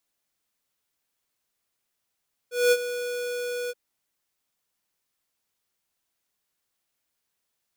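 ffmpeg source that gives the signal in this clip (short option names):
-f lavfi -i "aevalsrc='0.133*(2*lt(mod(488*t,1),0.5)-1)':d=1.226:s=44100,afade=t=in:d=0.207,afade=t=out:st=0.207:d=0.049:silence=0.224,afade=t=out:st=1.19:d=0.036"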